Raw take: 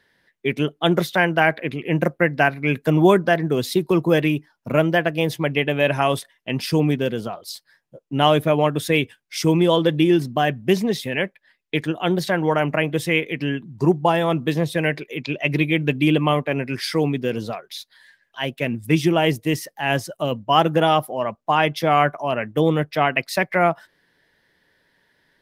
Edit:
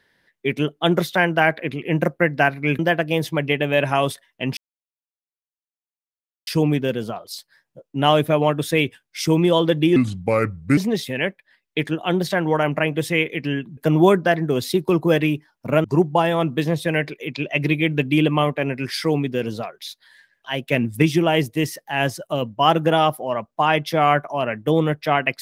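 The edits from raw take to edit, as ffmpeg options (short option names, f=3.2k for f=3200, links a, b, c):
-filter_complex "[0:a]asplit=9[a][b][c][d][e][f][g][h][i];[a]atrim=end=2.792[j];[b]atrim=start=4.858:end=6.64,asetpts=PTS-STARTPTS,afade=t=out:st=1.778:d=0.004:c=hsin,apad=pad_dur=1.9[k];[c]atrim=start=6.64:end=10.134,asetpts=PTS-STARTPTS,afade=t=in:d=0.004:c=hsin[l];[d]atrim=start=10.13:end=10.74,asetpts=PTS-STARTPTS,asetrate=33075,aresample=44100[m];[e]atrim=start=10.736:end=13.742[n];[f]atrim=start=2.788:end=4.862[o];[g]atrim=start=13.738:end=18.582[p];[h]atrim=start=18.578:end=18.922,asetpts=PTS-STARTPTS,volume=4dB[q];[i]atrim=start=18.918[r];[k][l]concat=n=2:v=0:a=1[s];[j][s]acrossfade=d=0.004:c1=hsin:c2=hsin[t];[t][m]acrossfade=d=0.004:c1=hsin:c2=hsin[u];[u][n]acrossfade=d=0.004:c1=hsin:c2=hsin[v];[v][o]acrossfade=d=0.004:c1=hsin:c2=hsin[w];[w][p]acrossfade=d=0.004:c1=hsin:c2=hsin[x];[x][q]acrossfade=d=0.004:c1=hsin:c2=hsin[y];[y][r]acrossfade=d=0.004:c1=hsin:c2=hsin"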